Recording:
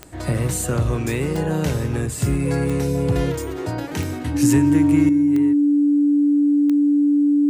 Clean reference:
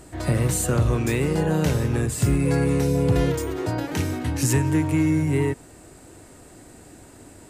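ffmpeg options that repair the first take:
ffmpeg -i in.wav -af "adeclick=threshold=4,bandreject=frequency=290:width=30,asetnsamples=nb_out_samples=441:pad=0,asendcmd='5.09 volume volume 11dB',volume=0dB" out.wav

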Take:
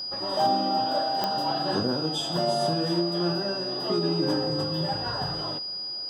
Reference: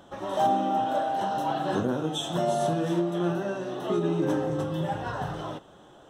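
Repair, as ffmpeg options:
ffmpeg -i in.wav -af "adeclick=threshold=4,bandreject=frequency=4900:width=30" out.wav

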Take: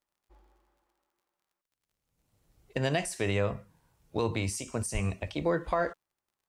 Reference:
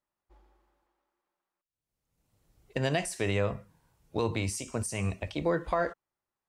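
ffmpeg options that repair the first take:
ffmpeg -i in.wav -filter_complex "[0:a]adeclick=threshold=4,asplit=3[link_01][link_02][link_03];[link_01]afade=type=out:start_time=4.93:duration=0.02[link_04];[link_02]highpass=frequency=140:width=0.5412,highpass=frequency=140:width=1.3066,afade=type=in:start_time=4.93:duration=0.02,afade=type=out:start_time=5.05:duration=0.02[link_05];[link_03]afade=type=in:start_time=5.05:duration=0.02[link_06];[link_04][link_05][link_06]amix=inputs=3:normalize=0" out.wav

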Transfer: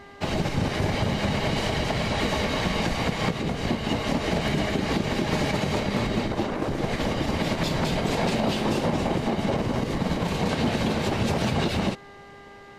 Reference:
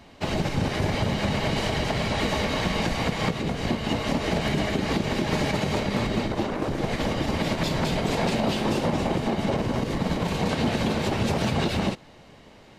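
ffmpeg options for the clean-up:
ffmpeg -i in.wav -af "bandreject=frequency=400.6:width_type=h:width=4,bandreject=frequency=801.2:width_type=h:width=4,bandreject=frequency=1201.8:width_type=h:width=4,bandreject=frequency=1602.4:width_type=h:width=4,bandreject=frequency=2003:width_type=h:width=4" out.wav

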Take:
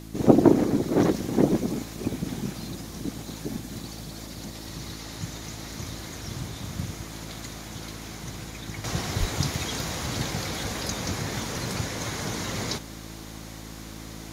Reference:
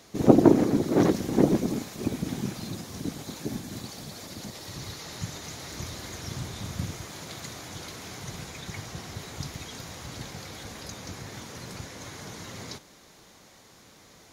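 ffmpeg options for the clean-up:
ffmpeg -i in.wav -filter_complex "[0:a]bandreject=frequency=54.5:width_type=h:width=4,bandreject=frequency=109:width_type=h:width=4,bandreject=frequency=163.5:width_type=h:width=4,bandreject=frequency=218:width_type=h:width=4,bandreject=frequency=272.5:width_type=h:width=4,bandreject=frequency=327:width_type=h:width=4,asplit=3[link_01][link_02][link_03];[link_01]afade=type=out:start_time=9.19:duration=0.02[link_04];[link_02]highpass=frequency=140:width=0.5412,highpass=frequency=140:width=1.3066,afade=type=in:start_time=9.19:duration=0.02,afade=type=out:start_time=9.31:duration=0.02[link_05];[link_03]afade=type=in:start_time=9.31:duration=0.02[link_06];[link_04][link_05][link_06]amix=inputs=3:normalize=0,afwtdn=0.0022,asetnsamples=nb_out_samples=441:pad=0,asendcmd='8.84 volume volume -9.5dB',volume=0dB" out.wav

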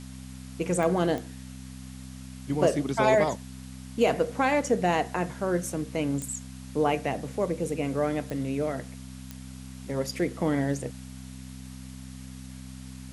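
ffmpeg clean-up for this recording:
ffmpeg -i in.wav -af "adeclick=threshold=4,bandreject=frequency=64.7:width_type=h:width=4,bandreject=frequency=129.4:width_type=h:width=4,bandreject=frequency=194.1:width_type=h:width=4,bandreject=frequency=258.8:width_type=h:width=4,afwtdn=0.0032" out.wav

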